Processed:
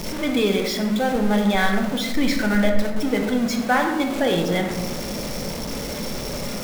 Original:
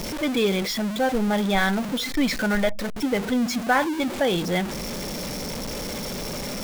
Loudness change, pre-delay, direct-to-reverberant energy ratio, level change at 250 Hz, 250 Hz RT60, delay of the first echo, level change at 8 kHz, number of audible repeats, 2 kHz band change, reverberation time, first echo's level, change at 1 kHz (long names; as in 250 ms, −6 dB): +2.5 dB, 12 ms, 3.0 dB, +3.0 dB, 1.6 s, no echo audible, +0.5 dB, no echo audible, +1.5 dB, 1.3 s, no echo audible, +2.0 dB